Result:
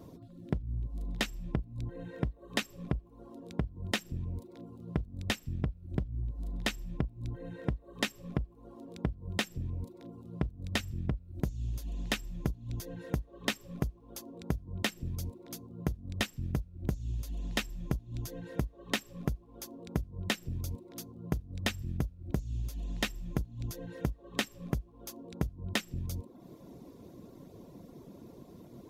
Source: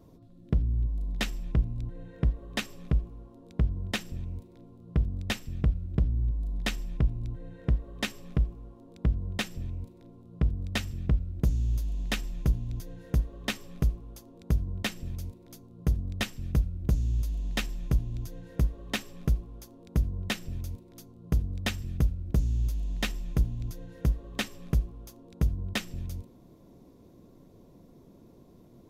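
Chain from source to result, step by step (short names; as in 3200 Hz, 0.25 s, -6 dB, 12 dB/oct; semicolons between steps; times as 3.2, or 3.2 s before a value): reverb removal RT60 0.61 s; compressor 6:1, threshold -34 dBFS, peak gain reduction 14 dB; HPF 86 Hz 6 dB/oct; gain +6.5 dB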